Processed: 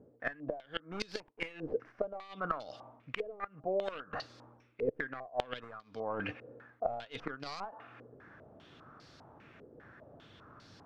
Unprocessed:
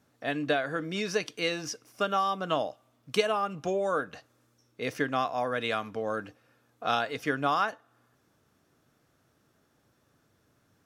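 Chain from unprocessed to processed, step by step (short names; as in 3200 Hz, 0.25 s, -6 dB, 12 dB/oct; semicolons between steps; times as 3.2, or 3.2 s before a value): tracing distortion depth 0.5 ms; flipped gate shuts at -20 dBFS, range -27 dB; reverse; compressor 8:1, threshold -48 dBFS, peak gain reduction 21.5 dB; reverse; stepped low-pass 5 Hz 470–4600 Hz; gain +10 dB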